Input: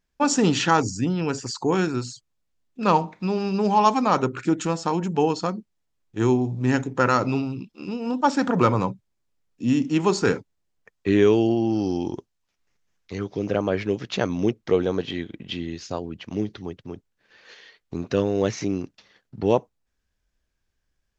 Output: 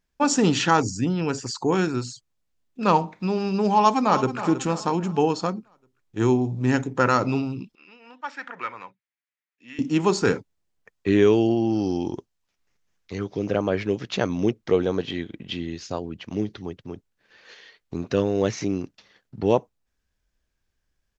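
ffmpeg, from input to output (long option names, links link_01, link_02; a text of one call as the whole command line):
ffmpeg -i in.wav -filter_complex "[0:a]asplit=2[link_01][link_02];[link_02]afade=type=in:start_time=3.76:duration=0.01,afade=type=out:start_time=4.4:duration=0.01,aecho=0:1:320|640|960|1280|1600:0.251189|0.113035|0.0508657|0.0228896|0.0103003[link_03];[link_01][link_03]amix=inputs=2:normalize=0,asettb=1/sr,asplit=3[link_04][link_05][link_06];[link_04]atrim=end=7.754[link_07];[link_05]atrim=start=7.75:end=9.79,asetpts=PTS-STARTPTS,afade=type=in:duration=0.004:curve=qsin,afade=type=out:start_time=2.036:duration=0.004:curve=qsin,bandpass=frequency=2000:width_type=q:width=2.7[link_08];[link_06]atrim=start=9.786[link_09];[link_07][link_08]acrossfade=duration=0.004:curve1=hsin:curve2=qsin[link_10];[link_10][link_09]acrossfade=duration=0.004:curve1=qsin:curve2=hsin" out.wav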